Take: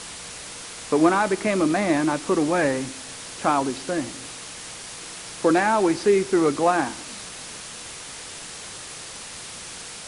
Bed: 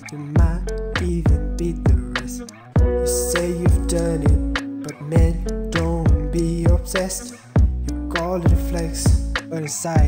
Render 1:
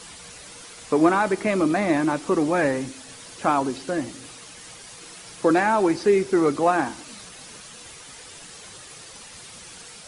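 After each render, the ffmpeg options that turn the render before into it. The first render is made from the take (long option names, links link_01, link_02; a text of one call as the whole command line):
ffmpeg -i in.wav -af "afftdn=noise_reduction=8:noise_floor=-38" out.wav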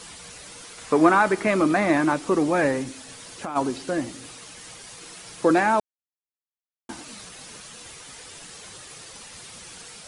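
ffmpeg -i in.wav -filter_complex "[0:a]asettb=1/sr,asplit=3[link_01][link_02][link_03];[link_01]atrim=end=0.784[link_04];[link_02]atrim=start=0.78:end=2.14,asetpts=PTS-STARTPTS,afade=type=in:duration=0.004:curve=qsin,afade=type=out:start_time=1.356:duration=0.004:curve=qsin,equalizer=frequency=1400:width_type=o:width=1.4:gain=4.5[link_05];[link_03]atrim=start=2.136[link_06];[link_04][link_05]acrossfade=duration=0.004:curve1=hsin:curve2=qsin[link_07];[link_07][link_06]acrossfade=duration=0.004:curve1=qsin:curve2=hsin,asplit=3[link_08][link_09][link_10];[link_08]afade=type=out:start_time=2.83:duration=0.02[link_11];[link_09]acompressor=threshold=-28dB:ratio=6:attack=3.2:release=140:knee=1:detection=peak,afade=type=in:start_time=2.83:duration=0.02,afade=type=out:start_time=3.55:duration=0.02[link_12];[link_10]afade=type=in:start_time=3.55:duration=0.02[link_13];[link_11][link_12][link_13]amix=inputs=3:normalize=0,asplit=3[link_14][link_15][link_16];[link_14]atrim=end=5.8,asetpts=PTS-STARTPTS,afade=type=out:start_time=5.796:duration=0.004:curve=hsin[link_17];[link_15]atrim=start=5.8:end=6.89,asetpts=PTS-STARTPTS,volume=0[link_18];[link_16]atrim=start=6.89,asetpts=PTS-STARTPTS,afade=type=in:duration=0.004:curve=hsin[link_19];[link_17][link_18][link_19]concat=n=3:v=0:a=1" out.wav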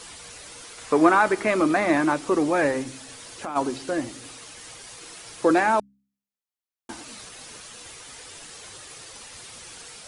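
ffmpeg -i in.wav -af "equalizer=frequency=180:width_type=o:width=0.45:gain=-7,bandreject=frequency=67.18:width_type=h:width=4,bandreject=frequency=134.36:width_type=h:width=4,bandreject=frequency=201.54:width_type=h:width=4,bandreject=frequency=268.72:width_type=h:width=4" out.wav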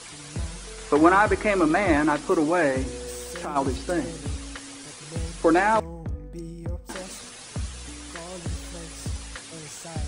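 ffmpeg -i in.wav -i bed.wav -filter_complex "[1:a]volume=-16.5dB[link_01];[0:a][link_01]amix=inputs=2:normalize=0" out.wav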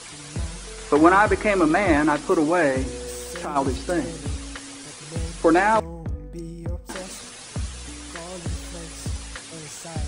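ffmpeg -i in.wav -af "volume=2dB" out.wav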